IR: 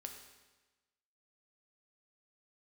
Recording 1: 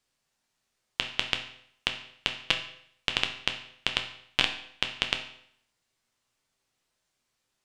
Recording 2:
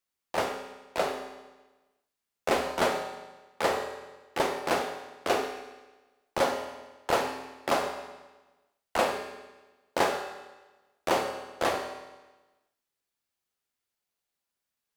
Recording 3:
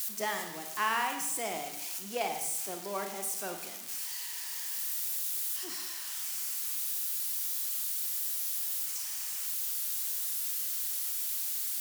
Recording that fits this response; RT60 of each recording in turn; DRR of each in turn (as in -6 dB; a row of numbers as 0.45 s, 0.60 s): 2; 0.65 s, 1.2 s, 0.90 s; 4.0 dB, 3.5 dB, 4.5 dB